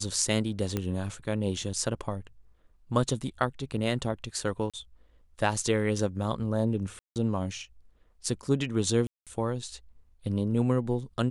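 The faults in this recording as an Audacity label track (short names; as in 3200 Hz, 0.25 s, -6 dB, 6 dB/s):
0.770000	0.770000	pop -15 dBFS
4.700000	4.740000	gap 36 ms
6.990000	7.160000	gap 0.168 s
9.070000	9.270000	gap 0.197 s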